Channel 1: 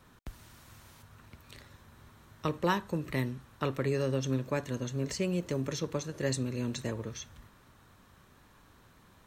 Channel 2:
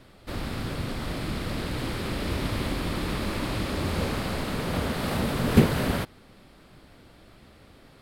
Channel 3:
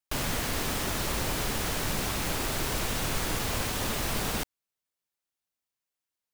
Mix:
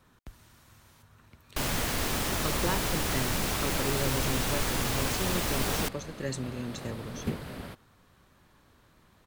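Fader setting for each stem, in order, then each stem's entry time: -3.0, -14.5, +0.5 dB; 0.00, 1.70, 1.45 s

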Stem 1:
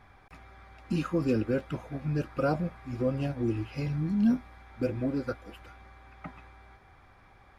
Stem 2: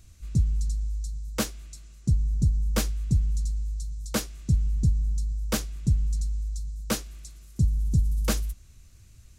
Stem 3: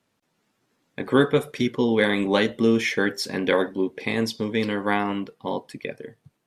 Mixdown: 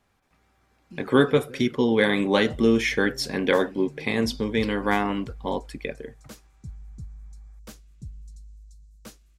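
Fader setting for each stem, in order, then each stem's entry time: -15.0, -17.0, 0.0 dB; 0.00, 2.15, 0.00 s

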